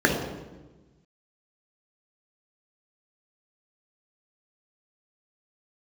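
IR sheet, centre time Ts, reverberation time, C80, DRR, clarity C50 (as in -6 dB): 42 ms, 1.2 s, 6.5 dB, 0.0 dB, 4.0 dB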